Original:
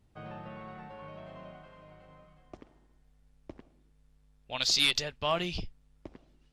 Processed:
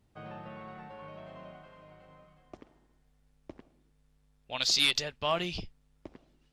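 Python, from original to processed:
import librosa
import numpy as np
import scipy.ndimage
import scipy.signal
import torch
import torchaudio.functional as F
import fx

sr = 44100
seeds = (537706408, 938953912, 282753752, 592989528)

y = fx.low_shelf(x, sr, hz=88.0, db=-6.0)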